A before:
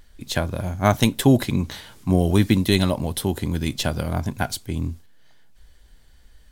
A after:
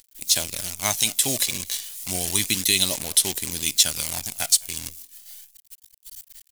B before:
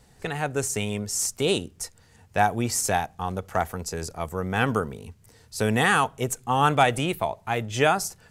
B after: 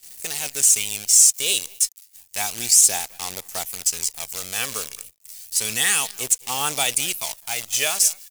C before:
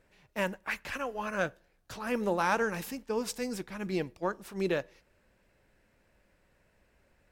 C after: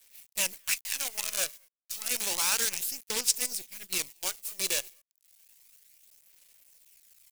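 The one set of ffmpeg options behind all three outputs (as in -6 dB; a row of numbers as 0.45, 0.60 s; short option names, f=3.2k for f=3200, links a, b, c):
-filter_complex "[0:a]aresample=32000,aresample=44100,bass=f=250:g=-7,treble=f=4k:g=1,acompressor=mode=upward:threshold=-39dB:ratio=2.5,asplit=2[a][b];[b]adelay=210,highpass=300,lowpass=3.4k,asoftclip=type=hard:threshold=-11.5dB,volume=-19dB[c];[a][c]amix=inputs=2:normalize=0,acrusher=bits=6:dc=4:mix=0:aa=0.000001,crystalizer=i=6.5:c=0,highshelf=f=2.3k:g=-4.5,acrossover=split=9900[d][e];[e]acompressor=threshold=-33dB:ratio=4:attack=1:release=60[f];[d][f]amix=inputs=2:normalize=0,aexciter=amount=4.4:drive=1:freq=2.1k,aphaser=in_gain=1:out_gain=1:delay=1.8:decay=0.32:speed=0.31:type=sinusoidal,agate=range=-15dB:threshold=-28dB:ratio=16:detection=peak,alimiter=level_in=-10dB:limit=-1dB:release=50:level=0:latency=1,volume=-1.5dB"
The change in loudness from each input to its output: +0.5, +6.0, +4.0 LU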